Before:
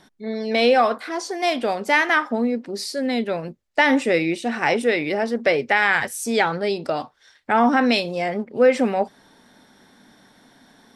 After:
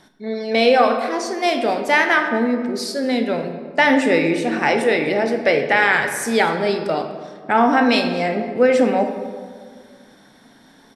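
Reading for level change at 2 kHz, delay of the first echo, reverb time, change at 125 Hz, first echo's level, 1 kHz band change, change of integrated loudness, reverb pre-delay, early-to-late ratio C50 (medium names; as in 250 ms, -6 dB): +2.5 dB, 248 ms, 1.8 s, +3.5 dB, -21.5 dB, +3.0 dB, +3.0 dB, 16 ms, 7.0 dB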